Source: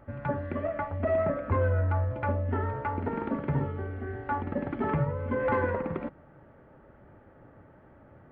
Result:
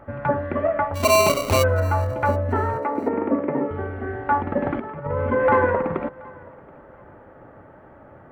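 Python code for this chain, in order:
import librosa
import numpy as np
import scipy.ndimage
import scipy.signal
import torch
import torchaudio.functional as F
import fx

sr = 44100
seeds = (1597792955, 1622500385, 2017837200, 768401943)

y = fx.peak_eq(x, sr, hz=870.0, db=7.5, octaves=2.8)
y = fx.sample_hold(y, sr, seeds[0], rate_hz=1700.0, jitter_pct=0, at=(0.94, 1.62), fade=0.02)
y = fx.cabinet(y, sr, low_hz=210.0, low_slope=24, high_hz=2400.0, hz=(290.0, 540.0, 890.0, 1500.0), db=(6, 4, -5, -10), at=(2.78, 3.71))
y = fx.over_compress(y, sr, threshold_db=-29.0, ratio=-0.5, at=(4.63, 5.32))
y = fx.echo_feedback(y, sr, ms=728, feedback_pct=27, wet_db=-24.0)
y = F.gain(torch.from_numpy(y), 3.5).numpy()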